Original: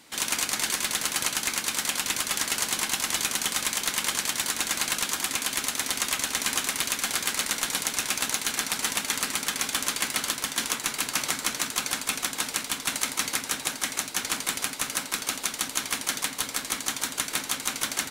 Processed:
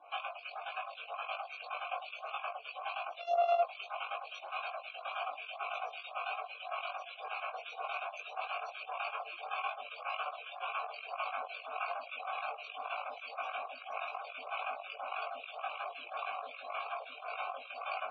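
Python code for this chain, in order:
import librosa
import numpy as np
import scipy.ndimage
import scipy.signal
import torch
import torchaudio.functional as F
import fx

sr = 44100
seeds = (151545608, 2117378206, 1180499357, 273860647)

y = fx.sample_sort(x, sr, block=64, at=(3.19, 3.62))
y = scipy.signal.sosfilt(scipy.signal.butter(2, 390.0, 'highpass', fs=sr, output='sos'), y)
y = fx.over_compress(y, sr, threshold_db=-32.0, ratio=-0.5)
y = fx.vowel_filter(y, sr, vowel='a')
y = fx.spec_topn(y, sr, count=64)
y = fx.doubler(y, sr, ms=20.0, db=-2.5)
y = fx.stagger_phaser(y, sr, hz=1.8)
y = y * librosa.db_to_amplitude(9.5)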